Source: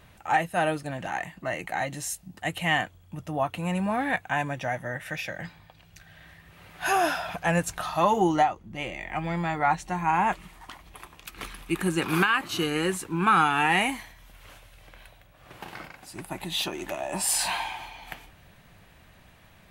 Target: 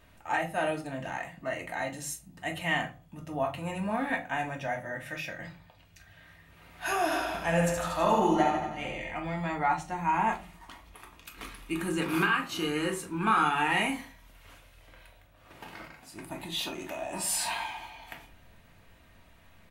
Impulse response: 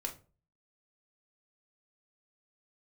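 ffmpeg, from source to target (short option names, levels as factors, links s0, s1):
-filter_complex "[0:a]asplit=3[s0][s1][s2];[s0]afade=t=out:st=7.1:d=0.02[s3];[s1]aecho=1:1:70|147|231.7|324.9|427.4:0.631|0.398|0.251|0.158|0.1,afade=t=in:st=7.1:d=0.02,afade=t=out:st=9.11:d=0.02[s4];[s2]afade=t=in:st=9.11:d=0.02[s5];[s3][s4][s5]amix=inputs=3:normalize=0[s6];[1:a]atrim=start_sample=2205[s7];[s6][s7]afir=irnorm=-1:irlink=0,volume=0.631"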